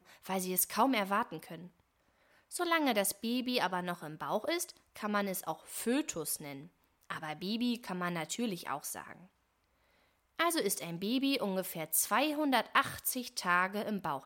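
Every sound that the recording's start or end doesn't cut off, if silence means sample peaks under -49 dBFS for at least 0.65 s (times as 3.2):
2.51–9.23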